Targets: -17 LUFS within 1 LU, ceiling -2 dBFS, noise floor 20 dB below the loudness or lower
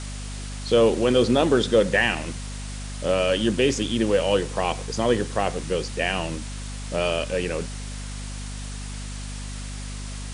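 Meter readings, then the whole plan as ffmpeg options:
hum 50 Hz; highest harmonic 250 Hz; hum level -31 dBFS; noise floor -33 dBFS; noise floor target -43 dBFS; loudness -23.0 LUFS; peak level -6.5 dBFS; loudness target -17.0 LUFS
-> -af "bandreject=f=50:t=h:w=6,bandreject=f=100:t=h:w=6,bandreject=f=150:t=h:w=6,bandreject=f=200:t=h:w=6,bandreject=f=250:t=h:w=6"
-af "afftdn=nr=10:nf=-33"
-af "volume=2,alimiter=limit=0.794:level=0:latency=1"

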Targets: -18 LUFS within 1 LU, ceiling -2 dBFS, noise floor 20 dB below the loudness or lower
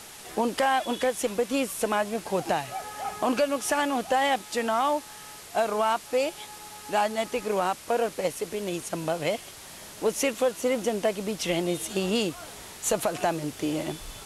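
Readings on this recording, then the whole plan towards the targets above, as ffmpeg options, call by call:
noise floor -45 dBFS; noise floor target -48 dBFS; loudness -27.5 LUFS; peak level -13.0 dBFS; loudness target -18.0 LUFS
-> -af "afftdn=nr=6:nf=-45"
-af "volume=2.99"

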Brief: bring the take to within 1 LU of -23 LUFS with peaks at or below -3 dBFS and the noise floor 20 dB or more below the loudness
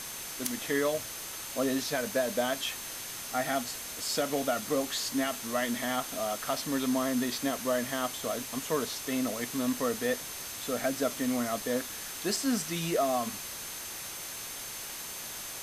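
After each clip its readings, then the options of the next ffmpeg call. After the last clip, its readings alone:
steady tone 6.3 kHz; tone level -47 dBFS; noise floor -41 dBFS; noise floor target -52 dBFS; loudness -31.5 LUFS; peak level -14.5 dBFS; loudness target -23.0 LUFS
-> -af "bandreject=f=6300:w=30"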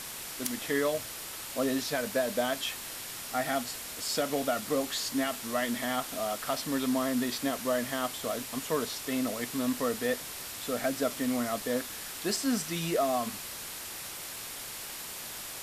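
steady tone not found; noise floor -41 dBFS; noise floor target -52 dBFS
-> -af "afftdn=nr=11:nf=-41"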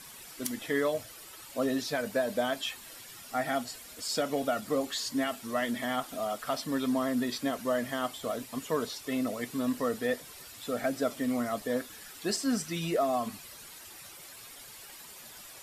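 noise floor -49 dBFS; noise floor target -52 dBFS
-> -af "afftdn=nr=6:nf=-49"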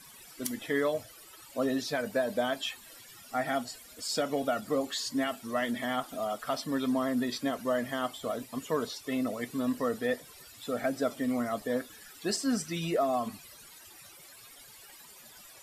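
noise floor -53 dBFS; loudness -32.5 LUFS; peak level -16.5 dBFS; loudness target -23.0 LUFS
-> -af "volume=2.99"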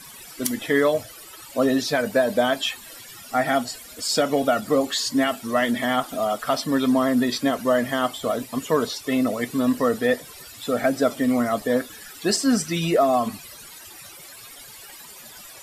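loudness -23.0 LUFS; peak level -7.0 dBFS; noise floor -43 dBFS

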